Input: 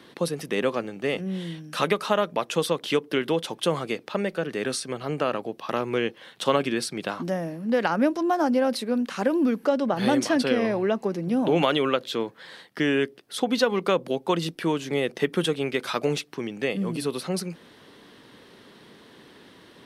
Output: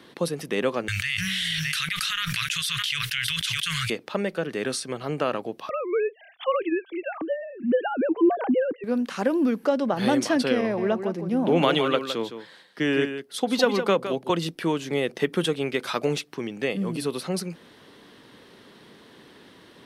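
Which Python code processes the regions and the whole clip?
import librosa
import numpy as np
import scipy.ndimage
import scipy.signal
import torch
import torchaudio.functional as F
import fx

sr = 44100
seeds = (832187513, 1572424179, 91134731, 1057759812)

y = fx.chain(x, sr, fx.cheby2_bandstop(low_hz=220.0, high_hz=830.0, order=4, stop_db=50),
    fx.echo_single(ms=610, db=-17.5),
    fx.env_flatten(amount_pct=100), at=(0.88, 3.9))
y = fx.chain(y, sr, fx.sine_speech(),
    fx.band_squash(depth_pct=40), at=(5.69, 8.84))
y = fx.chain(y, sr, fx.echo_single(ms=163, db=-8.0),
    fx.band_widen(depth_pct=40), at=(10.61, 14.3))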